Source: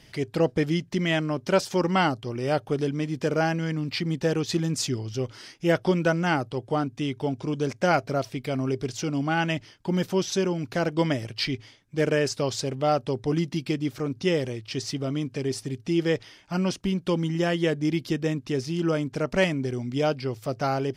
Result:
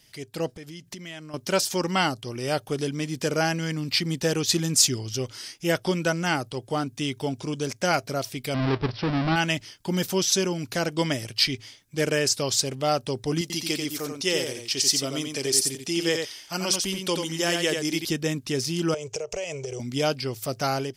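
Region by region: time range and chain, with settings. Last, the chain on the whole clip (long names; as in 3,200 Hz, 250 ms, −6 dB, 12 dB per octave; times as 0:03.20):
0:00.55–0:01.34: downward compressor 4 to 1, threshold −38 dBFS + one half of a high-frequency compander decoder only
0:08.54–0:09.36: each half-wave held at its own peak + head-to-tape spacing loss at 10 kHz 30 dB + bad sample-rate conversion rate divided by 4×, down none, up filtered
0:13.41–0:18.05: bass and treble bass −9 dB, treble +4 dB + single-tap delay 88 ms −5 dB
0:18.94–0:19.80: drawn EQ curve 110 Hz 0 dB, 180 Hz −11 dB, 260 Hz −24 dB, 440 Hz +12 dB, 1,200 Hz −4 dB, 1,700 Hz −8 dB, 2,600 Hz +4 dB, 4,100 Hz −7 dB, 6,600 Hz +9 dB, 11,000 Hz −13 dB + downward compressor 12 to 1, threshold −28 dBFS
whole clip: automatic gain control gain up to 11.5 dB; first-order pre-emphasis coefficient 0.8; level +3 dB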